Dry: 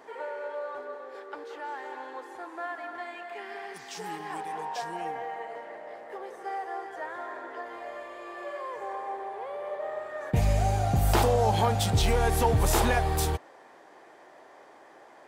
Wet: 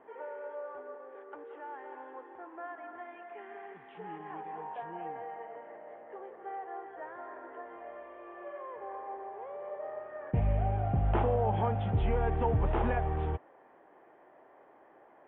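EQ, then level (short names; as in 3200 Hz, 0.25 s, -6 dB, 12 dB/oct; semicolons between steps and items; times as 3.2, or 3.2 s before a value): steep low-pass 3300 Hz 72 dB/oct; air absorption 240 m; high shelf 2100 Hz -9.5 dB; -4.0 dB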